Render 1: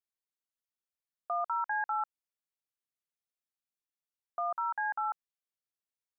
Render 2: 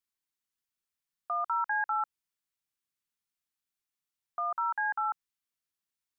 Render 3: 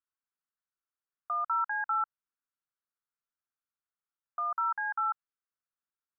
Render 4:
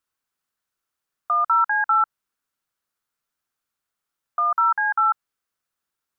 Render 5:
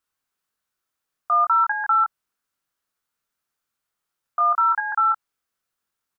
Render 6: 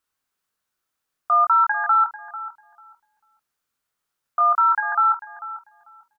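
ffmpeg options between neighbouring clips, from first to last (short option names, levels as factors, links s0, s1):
-af "equalizer=f=560:t=o:w=0.61:g=-14,volume=1.58"
-af "lowpass=f=1400:t=q:w=3.3,volume=0.398"
-af "acontrast=71,volume=1.68"
-filter_complex "[0:a]asplit=2[s0][s1];[s1]adelay=23,volume=0.562[s2];[s0][s2]amix=inputs=2:normalize=0"
-filter_complex "[0:a]asplit=2[s0][s1];[s1]adelay=444,lowpass=f=840:p=1,volume=0.316,asplit=2[s2][s3];[s3]adelay=444,lowpass=f=840:p=1,volume=0.28,asplit=2[s4][s5];[s5]adelay=444,lowpass=f=840:p=1,volume=0.28[s6];[s0][s2][s4][s6]amix=inputs=4:normalize=0,volume=1.19"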